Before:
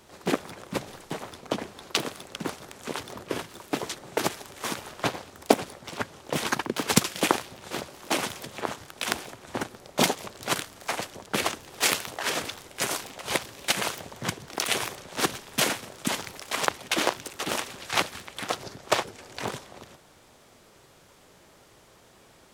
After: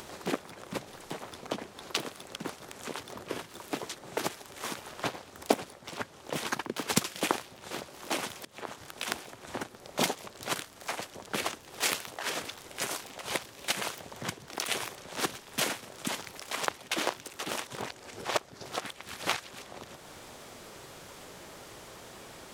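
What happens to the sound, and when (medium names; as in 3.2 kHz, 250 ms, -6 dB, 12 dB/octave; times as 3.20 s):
8.45–8.86 s: fade in, from -18.5 dB
17.67–19.62 s: reverse
whole clip: bass shelf 170 Hz -3.5 dB; upward compressor, threshold -29 dBFS; trim -5.5 dB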